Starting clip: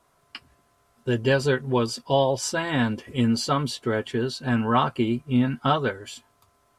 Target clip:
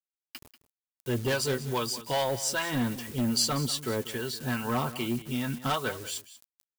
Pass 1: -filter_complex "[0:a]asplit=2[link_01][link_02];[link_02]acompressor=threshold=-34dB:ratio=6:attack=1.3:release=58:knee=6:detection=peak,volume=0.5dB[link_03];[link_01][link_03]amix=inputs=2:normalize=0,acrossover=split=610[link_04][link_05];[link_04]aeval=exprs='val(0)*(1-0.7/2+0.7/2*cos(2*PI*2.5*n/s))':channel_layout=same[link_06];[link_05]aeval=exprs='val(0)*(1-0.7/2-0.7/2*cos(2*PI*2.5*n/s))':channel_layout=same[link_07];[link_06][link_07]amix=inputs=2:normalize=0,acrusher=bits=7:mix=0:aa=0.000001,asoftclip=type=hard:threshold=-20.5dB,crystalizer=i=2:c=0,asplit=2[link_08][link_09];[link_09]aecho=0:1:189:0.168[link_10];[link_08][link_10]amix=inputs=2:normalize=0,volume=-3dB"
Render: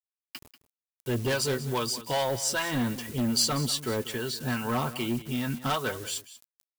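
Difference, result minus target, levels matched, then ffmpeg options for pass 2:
downward compressor: peak gain reduction −8.5 dB
-filter_complex "[0:a]asplit=2[link_01][link_02];[link_02]acompressor=threshold=-44dB:ratio=6:attack=1.3:release=58:knee=6:detection=peak,volume=0.5dB[link_03];[link_01][link_03]amix=inputs=2:normalize=0,acrossover=split=610[link_04][link_05];[link_04]aeval=exprs='val(0)*(1-0.7/2+0.7/2*cos(2*PI*2.5*n/s))':channel_layout=same[link_06];[link_05]aeval=exprs='val(0)*(1-0.7/2-0.7/2*cos(2*PI*2.5*n/s))':channel_layout=same[link_07];[link_06][link_07]amix=inputs=2:normalize=0,acrusher=bits=7:mix=0:aa=0.000001,asoftclip=type=hard:threshold=-20.5dB,crystalizer=i=2:c=0,asplit=2[link_08][link_09];[link_09]aecho=0:1:189:0.168[link_10];[link_08][link_10]amix=inputs=2:normalize=0,volume=-3dB"

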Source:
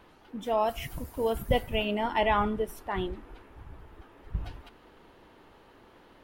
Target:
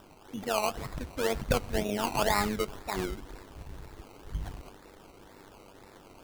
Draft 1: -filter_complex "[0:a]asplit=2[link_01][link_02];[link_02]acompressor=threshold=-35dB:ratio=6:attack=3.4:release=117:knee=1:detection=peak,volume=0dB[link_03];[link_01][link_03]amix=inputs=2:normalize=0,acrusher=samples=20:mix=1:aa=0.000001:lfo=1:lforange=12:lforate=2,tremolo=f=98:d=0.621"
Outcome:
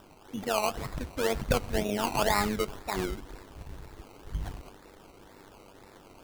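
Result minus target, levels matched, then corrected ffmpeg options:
downward compressor: peak gain reduction −5.5 dB
-filter_complex "[0:a]asplit=2[link_01][link_02];[link_02]acompressor=threshold=-41.5dB:ratio=6:attack=3.4:release=117:knee=1:detection=peak,volume=0dB[link_03];[link_01][link_03]amix=inputs=2:normalize=0,acrusher=samples=20:mix=1:aa=0.000001:lfo=1:lforange=12:lforate=2,tremolo=f=98:d=0.621"

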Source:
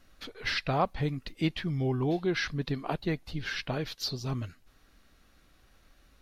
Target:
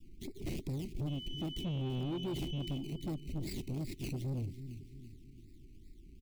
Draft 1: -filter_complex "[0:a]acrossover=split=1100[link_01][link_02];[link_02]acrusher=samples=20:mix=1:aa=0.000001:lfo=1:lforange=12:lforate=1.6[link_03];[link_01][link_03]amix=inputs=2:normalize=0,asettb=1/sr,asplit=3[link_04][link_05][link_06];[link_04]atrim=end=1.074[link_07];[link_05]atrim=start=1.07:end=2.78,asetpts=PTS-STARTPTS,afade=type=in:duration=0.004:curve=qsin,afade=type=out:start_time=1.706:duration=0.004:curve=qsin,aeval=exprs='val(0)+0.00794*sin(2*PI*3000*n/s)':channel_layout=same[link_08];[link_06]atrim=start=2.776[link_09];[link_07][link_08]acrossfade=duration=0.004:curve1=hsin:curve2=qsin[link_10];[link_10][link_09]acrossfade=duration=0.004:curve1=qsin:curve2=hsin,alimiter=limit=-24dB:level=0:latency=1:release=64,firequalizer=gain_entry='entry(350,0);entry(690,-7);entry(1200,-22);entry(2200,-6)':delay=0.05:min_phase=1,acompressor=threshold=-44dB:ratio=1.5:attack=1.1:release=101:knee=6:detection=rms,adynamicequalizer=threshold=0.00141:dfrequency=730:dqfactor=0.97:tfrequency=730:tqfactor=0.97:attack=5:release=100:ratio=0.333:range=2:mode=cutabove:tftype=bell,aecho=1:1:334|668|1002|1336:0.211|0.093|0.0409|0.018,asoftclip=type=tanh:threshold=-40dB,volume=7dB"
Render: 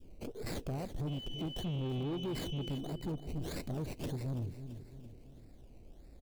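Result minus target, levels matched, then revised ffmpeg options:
sample-and-hold swept by an LFO: distortion −22 dB; 1,000 Hz band +4.0 dB
-filter_complex "[0:a]acrossover=split=1100[link_01][link_02];[link_02]acrusher=samples=20:mix=1:aa=0.000001:lfo=1:lforange=12:lforate=2.5[link_03];[link_01][link_03]amix=inputs=2:normalize=0,asettb=1/sr,asplit=3[link_04][link_05][link_06];[link_04]atrim=end=1.074[link_07];[link_05]atrim=start=1.07:end=2.78,asetpts=PTS-STARTPTS,afade=type=in:duration=0.004:curve=qsin,afade=type=out:start_time=1.706:duration=0.004:curve=qsin,aeval=exprs='val(0)+0.00794*sin(2*PI*3000*n/s)':channel_layout=same[link_08];[link_06]atrim=start=2.776[link_09];[link_07][link_08]acrossfade=duration=0.004:curve1=hsin:curve2=qsin[link_10];[link_10][link_09]acrossfade=duration=0.004:curve1=qsin:curve2=hsin,alimiter=limit=-24dB:level=0:latency=1:release=64,firequalizer=gain_entry='entry(350,0);entry(690,-7);entry(1200,-22);entry(2200,-6)':delay=0.05:min_phase=1,acompressor=threshold=-44dB:ratio=1.5:attack=1.1:release=101:knee=6:detection=rms,asuperstop=centerf=880:order=20:qfactor=0.57,adynamicequalizer=threshold=0.00141:dfrequency=730:dqfactor=0.97:tfrequency=730:tqfactor=0.97:attack=5:release=100:ratio=0.333:range=2:mode=cutabove:tftype=bell,aecho=1:1:334|668|1002|1336:0.211|0.093|0.0409|0.018,asoftclip=type=tanh:threshold=-40dB,volume=7dB"

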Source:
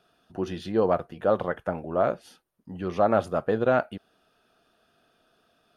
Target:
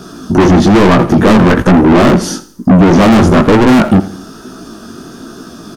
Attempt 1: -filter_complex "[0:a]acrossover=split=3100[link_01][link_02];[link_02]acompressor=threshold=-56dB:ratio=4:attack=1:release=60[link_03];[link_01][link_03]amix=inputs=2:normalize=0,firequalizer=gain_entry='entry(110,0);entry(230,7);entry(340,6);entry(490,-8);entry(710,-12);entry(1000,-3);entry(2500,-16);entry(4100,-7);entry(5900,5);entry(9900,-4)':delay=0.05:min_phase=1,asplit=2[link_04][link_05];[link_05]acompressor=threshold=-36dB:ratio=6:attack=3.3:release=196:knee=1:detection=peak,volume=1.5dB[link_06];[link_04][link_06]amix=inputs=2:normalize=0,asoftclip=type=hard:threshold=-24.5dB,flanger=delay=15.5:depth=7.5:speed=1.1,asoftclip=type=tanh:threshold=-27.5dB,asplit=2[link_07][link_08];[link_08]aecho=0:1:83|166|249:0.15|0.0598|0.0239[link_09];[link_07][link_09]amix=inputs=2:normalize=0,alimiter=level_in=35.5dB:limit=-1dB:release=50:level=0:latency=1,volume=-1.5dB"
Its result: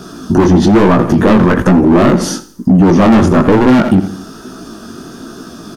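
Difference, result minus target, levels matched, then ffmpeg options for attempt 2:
downward compressor: peak gain reduction +7 dB; soft clipping: distortion −9 dB
-filter_complex "[0:a]acrossover=split=3100[link_01][link_02];[link_02]acompressor=threshold=-56dB:ratio=4:attack=1:release=60[link_03];[link_01][link_03]amix=inputs=2:normalize=0,firequalizer=gain_entry='entry(110,0);entry(230,7);entry(340,6);entry(490,-8);entry(710,-12);entry(1000,-3);entry(2500,-16);entry(4100,-7);entry(5900,5);entry(9900,-4)':delay=0.05:min_phase=1,asplit=2[link_04][link_05];[link_05]acompressor=threshold=-27.5dB:ratio=6:attack=3.3:release=196:knee=1:detection=peak,volume=1.5dB[link_06];[link_04][link_06]amix=inputs=2:normalize=0,asoftclip=type=hard:threshold=-24.5dB,flanger=delay=15.5:depth=7.5:speed=1.1,asoftclip=type=tanh:threshold=-36dB,asplit=2[link_07][link_08];[link_08]aecho=0:1:83|166|249:0.15|0.0598|0.0239[link_09];[link_07][link_09]amix=inputs=2:normalize=0,alimiter=level_in=35.5dB:limit=-1dB:release=50:level=0:latency=1,volume=-1.5dB"

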